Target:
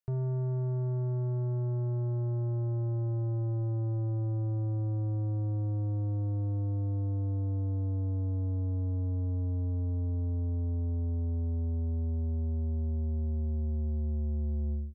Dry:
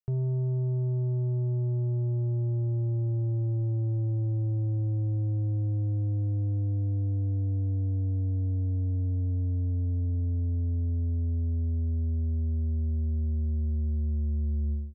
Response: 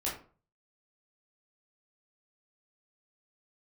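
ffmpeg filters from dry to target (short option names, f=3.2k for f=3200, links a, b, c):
-af "asoftclip=type=tanh:threshold=-28dB"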